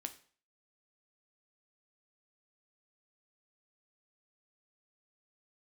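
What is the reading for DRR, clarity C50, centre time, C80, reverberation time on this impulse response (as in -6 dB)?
7.0 dB, 14.5 dB, 7 ms, 18.5 dB, 0.45 s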